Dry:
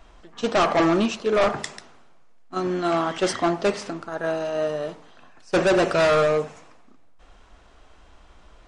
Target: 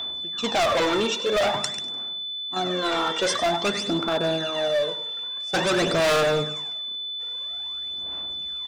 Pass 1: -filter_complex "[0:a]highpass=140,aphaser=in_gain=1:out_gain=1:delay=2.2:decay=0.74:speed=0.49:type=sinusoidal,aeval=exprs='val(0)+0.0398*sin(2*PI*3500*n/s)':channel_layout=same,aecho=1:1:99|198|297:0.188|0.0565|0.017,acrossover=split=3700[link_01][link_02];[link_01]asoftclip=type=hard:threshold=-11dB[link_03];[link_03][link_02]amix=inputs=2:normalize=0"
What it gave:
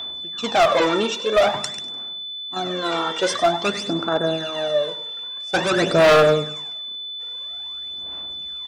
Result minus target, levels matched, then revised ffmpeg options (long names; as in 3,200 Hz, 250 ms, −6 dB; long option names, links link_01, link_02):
hard clipping: distortion −6 dB
-filter_complex "[0:a]highpass=140,aphaser=in_gain=1:out_gain=1:delay=2.2:decay=0.74:speed=0.49:type=sinusoidal,aeval=exprs='val(0)+0.0398*sin(2*PI*3500*n/s)':channel_layout=same,aecho=1:1:99|198|297:0.188|0.0565|0.017,acrossover=split=3700[link_01][link_02];[link_01]asoftclip=type=hard:threshold=-19.5dB[link_03];[link_03][link_02]amix=inputs=2:normalize=0"